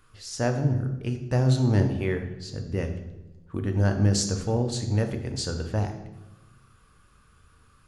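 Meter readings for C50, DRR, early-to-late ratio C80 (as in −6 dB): 8.5 dB, 5.0 dB, 11.0 dB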